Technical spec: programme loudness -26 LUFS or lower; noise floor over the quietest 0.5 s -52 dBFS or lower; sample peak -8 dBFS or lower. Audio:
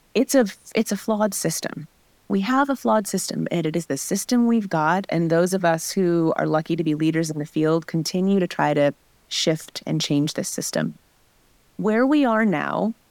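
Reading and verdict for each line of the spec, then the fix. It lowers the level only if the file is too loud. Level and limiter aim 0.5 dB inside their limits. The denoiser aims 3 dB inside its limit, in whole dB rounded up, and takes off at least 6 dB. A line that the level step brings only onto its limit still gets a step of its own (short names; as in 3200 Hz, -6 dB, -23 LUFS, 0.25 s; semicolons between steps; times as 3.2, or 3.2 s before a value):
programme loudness -22.0 LUFS: fail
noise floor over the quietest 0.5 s -59 dBFS: OK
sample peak -5.5 dBFS: fail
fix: gain -4.5 dB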